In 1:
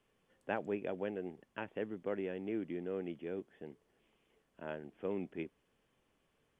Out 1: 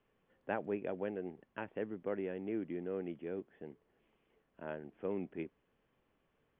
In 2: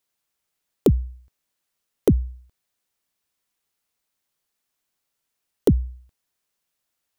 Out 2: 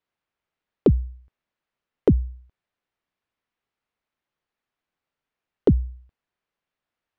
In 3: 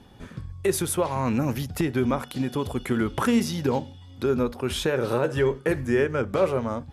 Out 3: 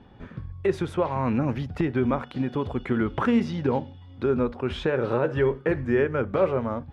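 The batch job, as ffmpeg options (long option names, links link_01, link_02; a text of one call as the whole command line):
ffmpeg -i in.wav -af "lowpass=2500" out.wav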